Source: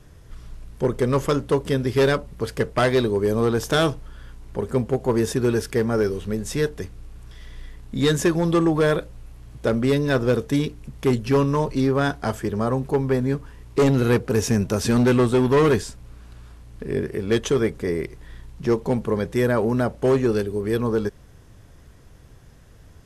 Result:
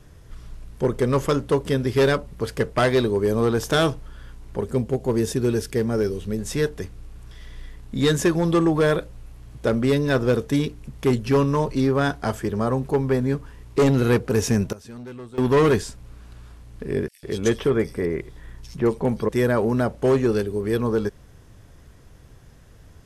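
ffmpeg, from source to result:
ffmpeg -i in.wav -filter_complex "[0:a]asettb=1/sr,asplit=3[link_01][link_02][link_03];[link_01]atrim=end=4.644[link_04];[link_02]atrim=start=4.64:end=6.39,asetpts=PTS-STARTPTS,afade=type=in:duration=0.004:curve=qsin,afade=type=out:start_time=1.746:duration=0.004:curve=qsin,equalizer=frequency=1200:width=0.71:gain=-6[link_05];[link_03]atrim=start=6.386[link_06];[link_04][link_05]acrossfade=duration=0.004:curve1=hsin:curve2=qsin[link_07];[link_07][link_06]acrossfade=duration=0.004:curve1=qsin:curve2=hsin,asettb=1/sr,asplit=3[link_08][link_09][link_10];[link_08]atrim=end=17.084[link_11];[link_09]atrim=start=17.08:end=19.29,asetpts=PTS-STARTPTS,afade=type=in:duration=0.004:curve=qsin,afade=type=out:start_time=2.206:duration=0.004:curve=qsin,acrossover=split=3400[link_12][link_13];[link_12]adelay=150[link_14];[link_14][link_13]amix=inputs=2:normalize=0,atrim=end_sample=97461[link_15];[link_10]atrim=start=19.286[link_16];[link_11][link_15]acrossfade=duration=0.004:curve1=hsin:curve2=qsin[link_17];[link_17][link_16]acrossfade=duration=0.004:curve1=qsin:curve2=hsin,asplit=3[link_18][link_19][link_20];[link_18]atrim=end=14.73,asetpts=PTS-STARTPTS,afade=type=out:start_time=14.56:duration=0.17:curve=log:silence=0.1[link_21];[link_19]atrim=start=14.73:end=15.38,asetpts=PTS-STARTPTS,volume=-20dB[link_22];[link_20]atrim=start=15.38,asetpts=PTS-STARTPTS,afade=type=in:duration=0.17:curve=log:silence=0.1[link_23];[link_21][link_22][link_23]concat=n=3:v=0:a=1" out.wav

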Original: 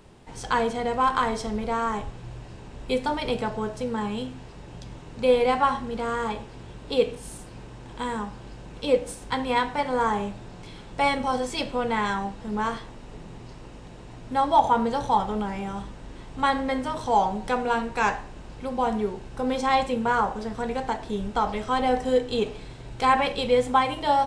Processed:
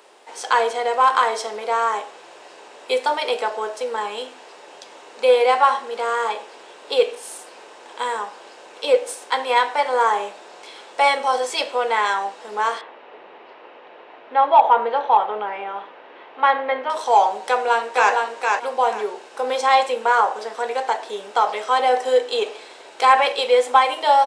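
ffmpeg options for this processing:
ffmpeg -i in.wav -filter_complex "[0:a]asettb=1/sr,asplit=3[link_01][link_02][link_03];[link_01]atrim=end=12.814[link_04];[link_02]atrim=start=12.81:end=16.9,asetpts=PTS-STARTPTS,afade=type=in:duration=0.004:curve=qsin,afade=type=out:start_time=4.086:duration=0.004:curve=qsin,lowpass=frequency=3000:width=0.5412,lowpass=frequency=3000:width=1.3066[link_05];[link_03]atrim=start=16.896[link_06];[link_04][link_05]acrossfade=duration=0.004:curve1=hsin:curve2=qsin[link_07];[link_07][link_06]acrossfade=duration=0.004:curve1=qsin:curve2=hsin,asplit=2[link_08][link_09];[link_09]afade=type=in:start_time=17.48:duration=0.01,afade=type=out:start_time=18.13:duration=0.01,aecho=0:1:460|920|1380:0.668344|0.133669|0.0267338[link_10];[link_08][link_10]amix=inputs=2:normalize=0,highpass=frequency=450:width=0.5412,highpass=frequency=450:width=1.3066,acontrast=52,volume=1dB" out.wav

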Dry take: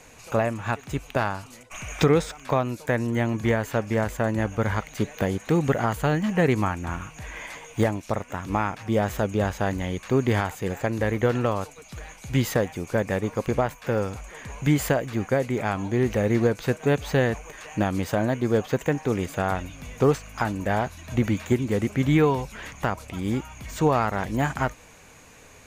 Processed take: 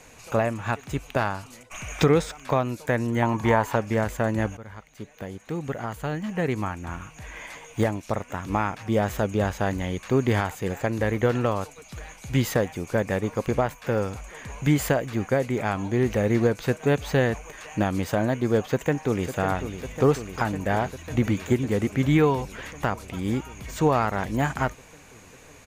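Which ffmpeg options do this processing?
ffmpeg -i in.wav -filter_complex "[0:a]asettb=1/sr,asplit=3[link_01][link_02][link_03];[link_01]atrim=end=3.224[link_04];[link_02]atrim=start=3.22:end=3.76,asetpts=PTS-STARTPTS,afade=type=in:duration=0.004:curve=qsin,afade=type=out:start_time=0.536:duration=0.004:curve=qsin,equalizer=frequency=940:width_type=o:width=0.62:gain=15[link_05];[link_03]atrim=start=3.756[link_06];[link_04][link_05]acrossfade=duration=0.004:curve1=hsin:curve2=qsin[link_07];[link_07][link_06]acrossfade=duration=0.004:curve1=qsin:curve2=hsin,asplit=2[link_08][link_09];[link_09]afade=type=in:start_time=18.67:duration=0.01,afade=type=out:start_time=19.26:duration=0.01,aecho=0:1:550|1100|1650|2200|2750|3300|3850|4400|4950|5500|6050|6600:0.316228|0.252982|0.202386|0.161909|0.129527|0.103622|0.0828972|0.0663178|0.0530542|0.0424434|0.0339547|0.0271638[link_10];[link_08][link_10]amix=inputs=2:normalize=0,asplit=2[link_11][link_12];[link_11]atrim=end=4.57,asetpts=PTS-STARTPTS,afade=type=out:start_time=4.566:duration=0.004:curve=hsin:silence=0.11885[link_13];[link_12]atrim=start=4.57,asetpts=PTS-STARTPTS,afade=type=in:duration=3.76:silence=0.11885[link_14];[link_13][link_14]concat=n=2:v=0:a=1" out.wav

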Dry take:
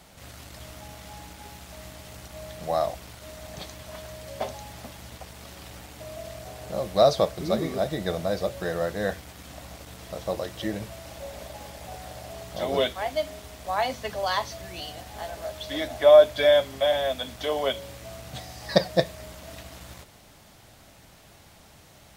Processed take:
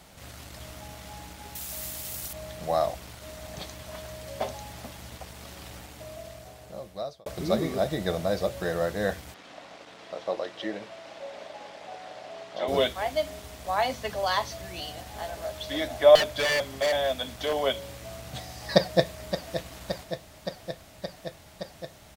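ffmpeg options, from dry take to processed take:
ffmpeg -i in.wav -filter_complex "[0:a]asettb=1/sr,asplit=3[link_01][link_02][link_03];[link_01]atrim=end=1.554[link_04];[link_02]atrim=start=1.55:end=2.33,asetpts=PTS-STARTPTS,afade=type=in:duration=0.004:curve=qsin,afade=type=out:start_time=0.776:duration=0.004:curve=qsin,aemphasis=mode=production:type=75fm[link_05];[link_03]atrim=start=2.326[link_06];[link_04][link_05]acrossfade=duration=0.004:curve1=hsin:curve2=qsin[link_07];[link_07][link_06]acrossfade=duration=0.004:curve1=qsin:curve2=hsin,asettb=1/sr,asplit=3[link_08][link_09][link_10];[link_08]atrim=end=9.344[link_11];[link_09]atrim=start=9.34:end=12.68,asetpts=PTS-STARTPTS,afade=type=in:duration=0.004:curve=qsin,afade=type=out:start_time=3.336:duration=0.004:curve=qsin,highpass=320,lowpass=4100[link_12];[link_10]atrim=start=12.676[link_13];[link_11][link_12]acrossfade=duration=0.004:curve1=hsin:curve2=qsin[link_14];[link_14][link_13]acrossfade=duration=0.004:curve1=qsin:curve2=hsin,asettb=1/sr,asplit=3[link_15][link_16][link_17];[link_15]atrim=end=16.154[link_18];[link_16]atrim=start=16.15:end=17.62,asetpts=PTS-STARTPTS,afade=type=in:duration=0.004:curve=qsin,afade=type=out:start_time=1.466:duration=0.004:curve=qsin,aeval=exprs='0.106*(abs(mod(val(0)/0.106+3,4)-2)-1)':channel_layout=same[link_19];[link_17]atrim=start=17.616[link_20];[link_18][link_19]acrossfade=duration=0.004:curve1=hsin:curve2=qsin[link_21];[link_21][link_20]acrossfade=duration=0.004:curve1=qsin:curve2=hsin,asplit=2[link_22][link_23];[link_23]afade=type=in:start_time=18.74:duration=0.01,afade=type=out:start_time=19.57:duration=0.01,aecho=0:1:570|1140|1710|2280|2850|3420|3990|4560|5130|5700|6270|6840:0.298538|0.238831|0.191064|0.152852|0.122281|0.097825|0.07826|0.062608|0.0500864|0.0400691|0.0320553|0.0256442[link_24];[link_22][link_24]amix=inputs=2:normalize=0,asplit=2[link_25][link_26];[link_25]atrim=end=7.26,asetpts=PTS-STARTPTS,afade=type=out:start_time=5.72:duration=1.54[link_27];[link_26]atrim=start=7.26,asetpts=PTS-STARTPTS,afade=type=in:duration=0.004:curve=hsin[link_28];[link_27][link_28]concat=n=2:v=0:a=1" out.wav

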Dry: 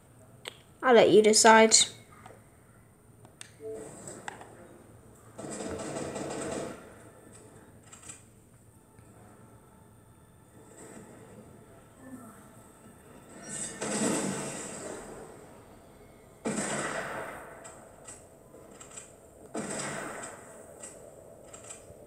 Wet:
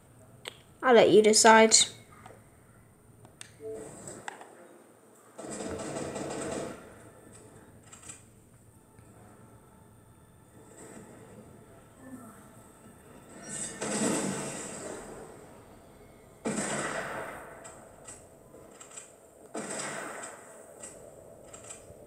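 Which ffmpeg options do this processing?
ffmpeg -i in.wav -filter_complex "[0:a]asettb=1/sr,asplit=3[link_01][link_02][link_03];[link_01]atrim=end=4.234[link_04];[link_02]atrim=start=4.23:end=5.48,asetpts=PTS-STARTPTS,afade=type=in:duration=0.004:curve=qsin,afade=type=out:start_time=1.246:duration=0.004:curve=qsin,highpass=250[link_05];[link_03]atrim=start=5.476[link_06];[link_04][link_05]acrossfade=duration=0.004:curve1=hsin:curve2=qsin[link_07];[link_07][link_06]acrossfade=duration=0.004:curve1=qsin:curve2=hsin,asettb=1/sr,asplit=3[link_08][link_09][link_10];[link_08]atrim=end=18.694[link_11];[link_09]atrim=start=18.69:end=20.77,asetpts=PTS-STARTPTS,afade=type=in:duration=0.004:curve=qsin,afade=type=out:start_time=2.076:duration=0.004:curve=qsin,lowshelf=frequency=180:gain=-9.5[link_12];[link_10]atrim=start=20.766[link_13];[link_11][link_12]acrossfade=duration=0.004:curve1=hsin:curve2=qsin[link_14];[link_14][link_13]acrossfade=duration=0.004:curve1=qsin:curve2=hsin" out.wav

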